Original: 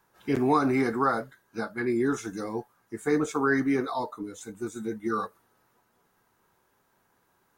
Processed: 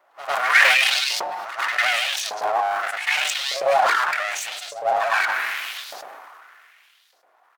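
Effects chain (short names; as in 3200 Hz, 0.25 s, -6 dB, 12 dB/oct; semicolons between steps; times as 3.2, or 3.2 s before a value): Wiener smoothing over 25 samples; high shelf 8200 Hz +8 dB; notches 50/100/150/200/250/300/350/400/450 Hz; comb 2.8 ms, depth 81%; in parallel at +1.5 dB: compressor, threshold -31 dBFS, peak gain reduction 14 dB; on the sum: full-wave rectifier; LFO high-pass saw up 0.83 Hz 610–5200 Hz; reverse echo 0.101 s -13 dB; on a send at -24 dB: reverb RT60 0.65 s, pre-delay 3 ms; on the sum: sustainer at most 22 dB/s; gain +5.5 dB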